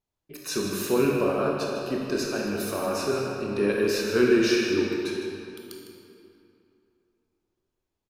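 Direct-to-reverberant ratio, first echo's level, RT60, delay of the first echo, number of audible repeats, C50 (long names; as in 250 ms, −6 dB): −2.0 dB, −11.0 dB, 2.8 s, 155 ms, 1, −0.5 dB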